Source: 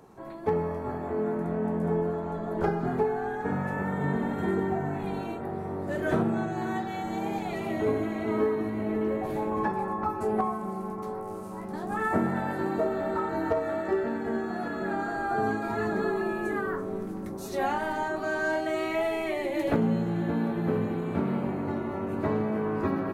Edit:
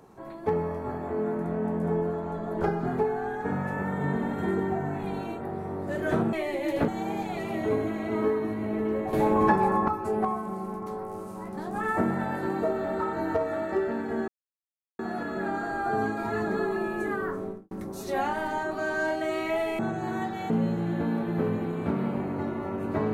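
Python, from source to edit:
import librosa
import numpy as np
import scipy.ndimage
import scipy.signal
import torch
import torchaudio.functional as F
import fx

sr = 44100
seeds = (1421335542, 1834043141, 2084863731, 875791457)

y = fx.studio_fade_out(x, sr, start_s=16.85, length_s=0.31)
y = fx.edit(y, sr, fx.swap(start_s=6.33, length_s=0.71, other_s=19.24, other_length_s=0.55),
    fx.clip_gain(start_s=9.29, length_s=0.75, db=7.0),
    fx.insert_silence(at_s=14.44, length_s=0.71), tone=tone)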